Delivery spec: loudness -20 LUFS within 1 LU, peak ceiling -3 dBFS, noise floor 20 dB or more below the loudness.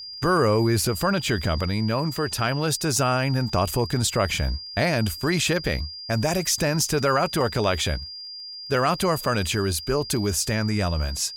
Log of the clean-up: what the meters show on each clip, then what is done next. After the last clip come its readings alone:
ticks 25/s; steady tone 4800 Hz; tone level -35 dBFS; loudness -23.5 LUFS; peak -9.0 dBFS; loudness target -20.0 LUFS
-> de-click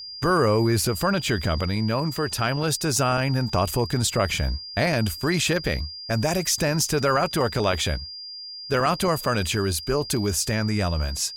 ticks 0.18/s; steady tone 4800 Hz; tone level -35 dBFS
-> notch 4800 Hz, Q 30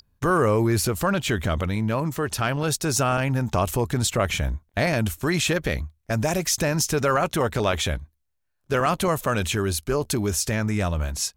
steady tone none; loudness -24.0 LUFS; peak -9.0 dBFS; loudness target -20.0 LUFS
-> gain +4 dB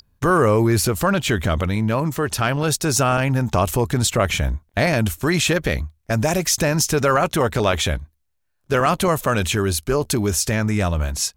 loudness -20.0 LUFS; peak -5.0 dBFS; noise floor -68 dBFS

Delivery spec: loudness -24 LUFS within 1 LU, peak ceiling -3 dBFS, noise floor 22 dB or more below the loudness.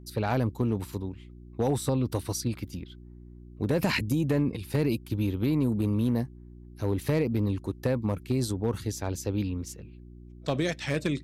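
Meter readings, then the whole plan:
clipped 0.4%; flat tops at -18.0 dBFS; hum 60 Hz; harmonics up to 360 Hz; hum level -47 dBFS; loudness -29.5 LUFS; peak -18.0 dBFS; loudness target -24.0 LUFS
-> clip repair -18 dBFS; de-hum 60 Hz, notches 6; gain +5.5 dB

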